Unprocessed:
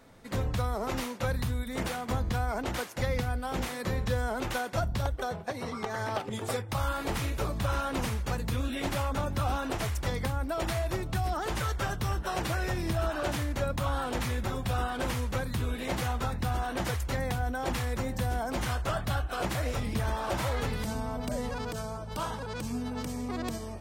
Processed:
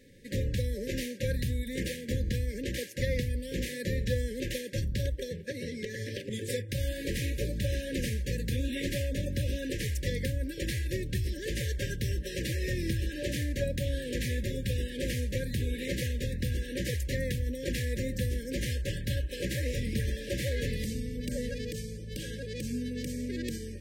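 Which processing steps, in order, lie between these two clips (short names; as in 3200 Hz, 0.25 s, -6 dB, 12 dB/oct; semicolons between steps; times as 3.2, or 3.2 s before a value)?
FFT band-reject 590–1600 Hz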